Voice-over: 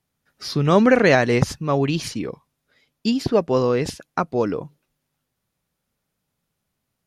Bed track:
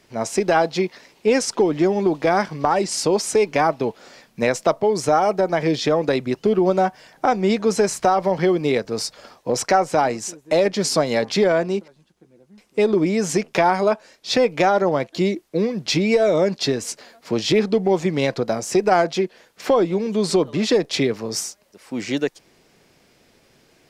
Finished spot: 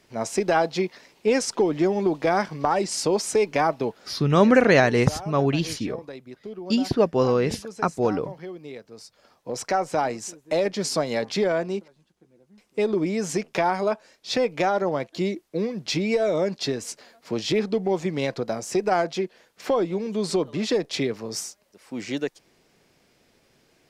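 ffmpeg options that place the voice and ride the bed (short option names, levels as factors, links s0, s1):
-filter_complex "[0:a]adelay=3650,volume=0.841[s0];[1:a]volume=3.16,afade=t=out:st=3.86:d=0.38:silence=0.16788,afade=t=in:st=9.1:d=0.79:silence=0.211349[s1];[s0][s1]amix=inputs=2:normalize=0"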